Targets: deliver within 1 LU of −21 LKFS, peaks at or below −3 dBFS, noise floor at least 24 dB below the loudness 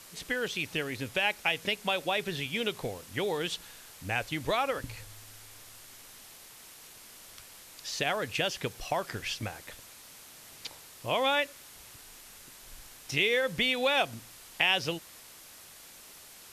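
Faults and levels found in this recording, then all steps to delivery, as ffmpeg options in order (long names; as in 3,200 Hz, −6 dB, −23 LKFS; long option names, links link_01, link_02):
background noise floor −51 dBFS; target noise floor −55 dBFS; integrated loudness −30.5 LKFS; sample peak −8.0 dBFS; target loudness −21.0 LKFS
→ -af "afftdn=noise_reduction=6:noise_floor=-51"
-af "volume=9.5dB,alimiter=limit=-3dB:level=0:latency=1"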